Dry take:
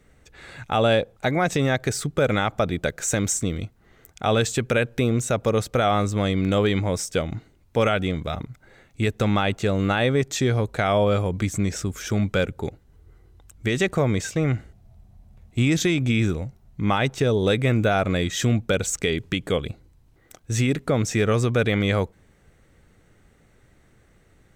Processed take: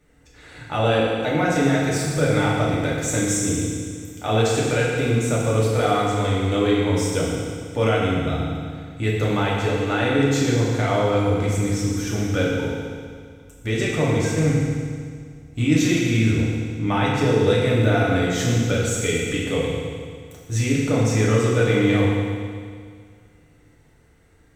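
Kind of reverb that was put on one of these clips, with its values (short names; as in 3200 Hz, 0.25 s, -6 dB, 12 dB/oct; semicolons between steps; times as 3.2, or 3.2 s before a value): FDN reverb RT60 2 s, low-frequency decay 1.1×, high-frequency decay 1×, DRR -6 dB; gain -5.5 dB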